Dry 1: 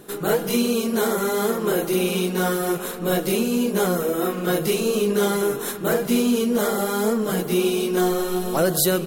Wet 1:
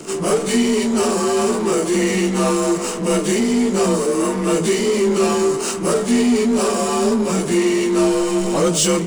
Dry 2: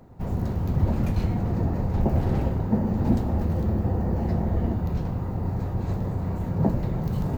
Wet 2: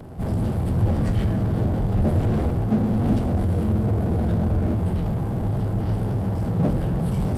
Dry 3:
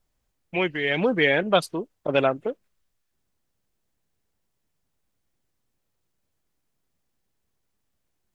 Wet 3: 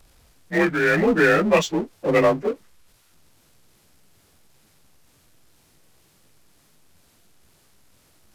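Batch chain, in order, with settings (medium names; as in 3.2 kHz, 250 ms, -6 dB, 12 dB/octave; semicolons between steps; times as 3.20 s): frequency axis rescaled in octaves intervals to 89%; power-law waveshaper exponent 0.7; trim +2.5 dB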